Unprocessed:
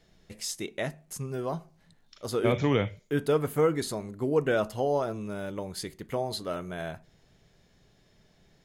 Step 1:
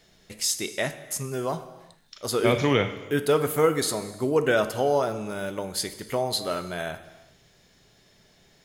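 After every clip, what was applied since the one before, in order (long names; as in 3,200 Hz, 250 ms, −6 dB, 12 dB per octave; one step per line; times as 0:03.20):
spectral tilt +1.5 dB per octave
reverb whose tail is shaped and stops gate 440 ms falling, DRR 10.5 dB
level +5 dB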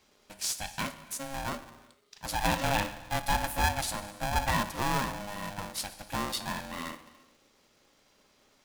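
ring modulator with a square carrier 410 Hz
level −6.5 dB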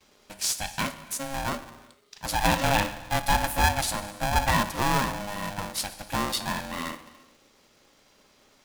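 noise gate with hold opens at −58 dBFS
level +5 dB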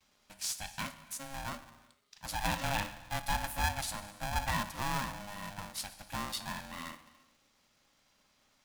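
parametric band 410 Hz −10 dB 0.86 octaves
level −9 dB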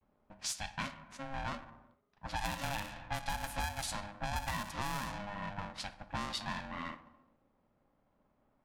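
low-pass that shuts in the quiet parts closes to 750 Hz, open at −30.5 dBFS
downward compressor 10 to 1, threshold −36 dBFS, peak gain reduction 10.5 dB
pitch vibrato 0.49 Hz 23 cents
level +3 dB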